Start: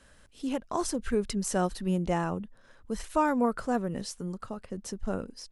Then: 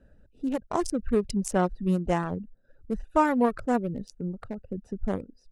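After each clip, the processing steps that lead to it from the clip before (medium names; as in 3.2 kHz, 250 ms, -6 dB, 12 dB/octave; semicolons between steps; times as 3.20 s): local Wiener filter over 41 samples; reverb removal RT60 0.6 s; trim +4.5 dB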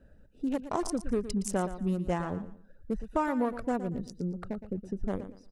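compression 2.5:1, threshold -28 dBFS, peak gain reduction 8 dB; feedback delay 116 ms, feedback 27%, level -12.5 dB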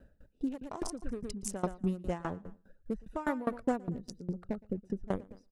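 sawtooth tremolo in dB decaying 4.9 Hz, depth 22 dB; trim +3.5 dB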